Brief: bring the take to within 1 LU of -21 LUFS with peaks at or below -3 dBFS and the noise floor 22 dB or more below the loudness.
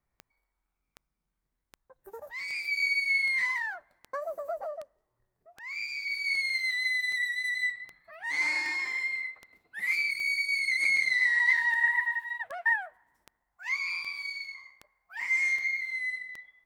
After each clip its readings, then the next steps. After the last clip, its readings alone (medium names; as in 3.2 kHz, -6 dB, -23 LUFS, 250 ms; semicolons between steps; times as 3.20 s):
clicks found 22; loudness -28.0 LUFS; peak level -15.0 dBFS; loudness target -21.0 LUFS
-> de-click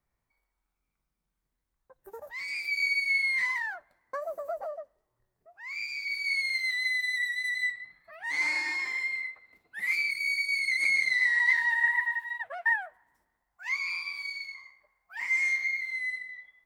clicks found 0; loudness -28.0 LUFS; peak level -15.0 dBFS; loudness target -21.0 LUFS
-> trim +7 dB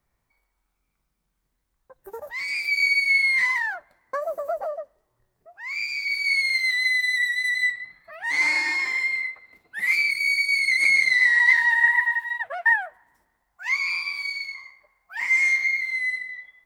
loudness -21.0 LUFS; peak level -8.0 dBFS; noise floor -76 dBFS